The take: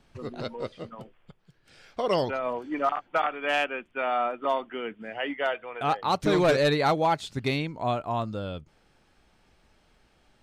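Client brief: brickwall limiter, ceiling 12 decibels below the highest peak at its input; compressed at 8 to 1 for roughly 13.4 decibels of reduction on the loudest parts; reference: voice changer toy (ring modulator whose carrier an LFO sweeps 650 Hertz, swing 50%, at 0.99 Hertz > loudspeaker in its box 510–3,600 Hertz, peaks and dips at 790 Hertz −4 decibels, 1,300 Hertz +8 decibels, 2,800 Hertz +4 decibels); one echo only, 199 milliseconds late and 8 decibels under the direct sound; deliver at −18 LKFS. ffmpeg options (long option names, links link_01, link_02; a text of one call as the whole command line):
ffmpeg -i in.wav -af "acompressor=threshold=-33dB:ratio=8,alimiter=level_in=10dB:limit=-24dB:level=0:latency=1,volume=-10dB,aecho=1:1:199:0.398,aeval=exprs='val(0)*sin(2*PI*650*n/s+650*0.5/0.99*sin(2*PI*0.99*n/s))':channel_layout=same,highpass=510,equalizer=frequency=790:width_type=q:width=4:gain=-4,equalizer=frequency=1300:width_type=q:width=4:gain=8,equalizer=frequency=2800:width_type=q:width=4:gain=4,lowpass=frequency=3600:width=0.5412,lowpass=frequency=3600:width=1.3066,volume=26.5dB" out.wav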